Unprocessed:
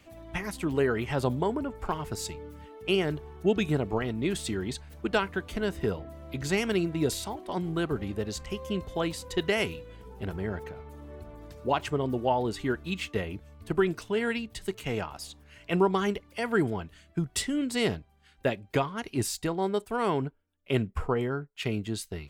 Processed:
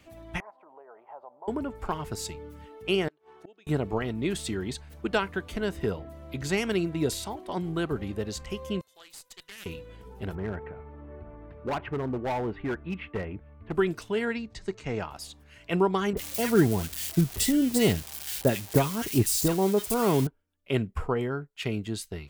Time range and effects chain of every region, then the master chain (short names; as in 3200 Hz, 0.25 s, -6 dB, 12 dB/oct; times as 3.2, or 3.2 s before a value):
0.4–1.48 compressor 8:1, threshold -32 dBFS + Butterworth band-pass 790 Hz, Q 1.9
3.08–3.67 HPF 430 Hz + flipped gate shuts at -34 dBFS, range -26 dB + air absorption 53 m
8.81–9.66 differentiator + tube stage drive 33 dB, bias 0.8 + Doppler distortion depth 0.33 ms
10.35–13.72 LPF 2300 Hz 24 dB/oct + hard clip -26 dBFS
14.25–15.01 LPF 6700 Hz 24 dB/oct + bell 3100 Hz -9 dB 0.52 oct
16.13–20.27 switching spikes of -24 dBFS + low shelf 430 Hz +8 dB + bands offset in time lows, highs 40 ms, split 1400 Hz
whole clip: dry